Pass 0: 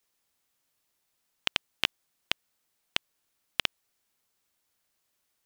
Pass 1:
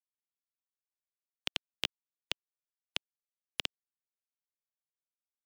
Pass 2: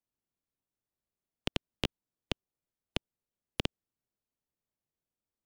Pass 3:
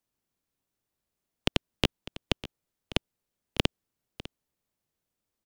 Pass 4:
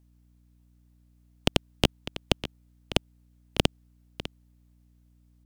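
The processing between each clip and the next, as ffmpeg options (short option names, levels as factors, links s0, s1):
-filter_complex "[0:a]afftfilt=real='re*gte(hypot(re,im),0.00178)':imag='im*gte(hypot(re,im),0.00178)':win_size=1024:overlap=0.75,acrossover=split=250|710|2800[s0][s1][s2][s3];[s2]alimiter=limit=0.112:level=0:latency=1[s4];[s0][s1][s4][s3]amix=inputs=4:normalize=0,volume=0.631"
-af "tiltshelf=f=750:g=9.5,volume=2"
-af "aecho=1:1:601:0.158,volume=2.24"
-af "aeval=exprs='val(0)+0.000562*(sin(2*PI*60*n/s)+sin(2*PI*2*60*n/s)/2+sin(2*PI*3*60*n/s)/3+sin(2*PI*4*60*n/s)/4+sin(2*PI*5*60*n/s)/5)':c=same,asoftclip=type=tanh:threshold=0.224,volume=1.88"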